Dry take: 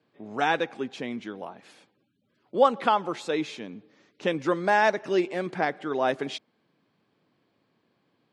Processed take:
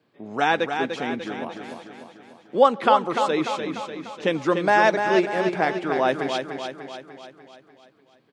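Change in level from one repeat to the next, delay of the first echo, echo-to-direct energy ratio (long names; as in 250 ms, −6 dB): −5.5 dB, 296 ms, −5.0 dB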